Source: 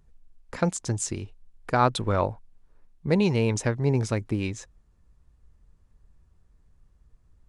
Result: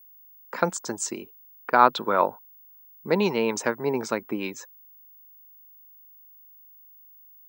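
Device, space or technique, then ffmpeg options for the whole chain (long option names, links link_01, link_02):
old television with a line whistle: -filter_complex "[0:a]asettb=1/sr,asplit=3[link_01][link_02][link_03];[link_01]atrim=end=1.214[link_04];[link_02]atrim=start=1.21:end=2.19,asetpts=PTS-STARTPTS,afade=type=in:duration=0.004:curve=qsin,afade=type=out:start_time=0.976:duration=0.004:curve=qsin,lowpass=5100[link_05];[link_03]atrim=start=2.186[link_06];[link_04][link_05]acrossfade=duration=0.004:curve1=hsin:curve2=qsin[link_07];[link_07][link_06]acrossfade=duration=0.004:curve1=qsin:curve2=hsin,highpass=frequency=220:width=0.5412,highpass=frequency=220:width=1.3066,equalizer=frequency=280:width_type=q:width=4:gain=-4,equalizer=frequency=980:width_type=q:width=4:gain=6,equalizer=frequency=1400:width_type=q:width=4:gain=5,lowpass=frequency=8200:width=0.5412,lowpass=frequency=8200:width=1.3066,aeval=exprs='val(0)+0.00282*sin(2*PI*15625*n/s)':channel_layout=same,afftdn=noise_reduction=13:noise_floor=-51,volume=2dB"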